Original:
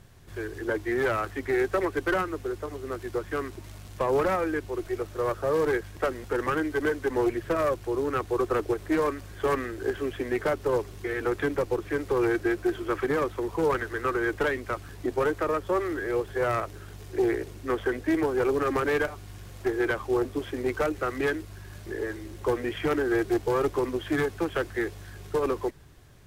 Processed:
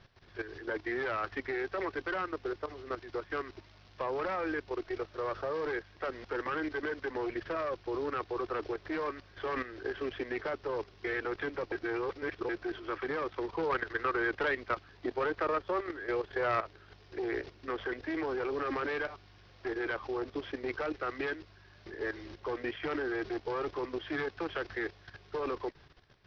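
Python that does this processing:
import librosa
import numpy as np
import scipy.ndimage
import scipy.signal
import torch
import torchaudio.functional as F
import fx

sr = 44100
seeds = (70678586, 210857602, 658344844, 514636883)

y = fx.resample_bad(x, sr, factor=4, down='filtered', up='zero_stuff', at=(13.47, 16.92))
y = fx.edit(y, sr, fx.reverse_span(start_s=11.72, length_s=0.77), tone=tone)
y = fx.low_shelf(y, sr, hz=380.0, db=-10.0)
y = fx.level_steps(y, sr, step_db=12)
y = scipy.signal.sosfilt(scipy.signal.butter(12, 5500.0, 'lowpass', fs=sr, output='sos'), y)
y = y * librosa.db_to_amplitude(2.5)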